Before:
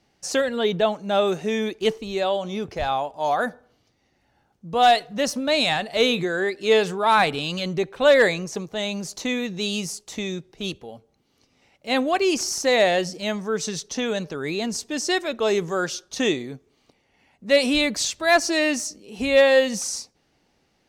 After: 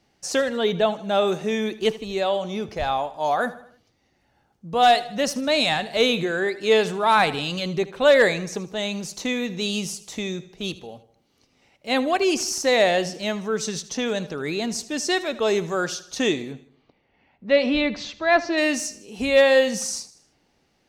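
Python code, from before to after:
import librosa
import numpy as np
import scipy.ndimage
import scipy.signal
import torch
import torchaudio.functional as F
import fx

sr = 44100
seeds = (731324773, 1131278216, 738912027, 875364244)

y = fx.gaussian_blur(x, sr, sigma=2.2, at=(16.52, 18.57), fade=0.02)
y = fx.echo_feedback(y, sr, ms=78, feedback_pct=48, wet_db=-17)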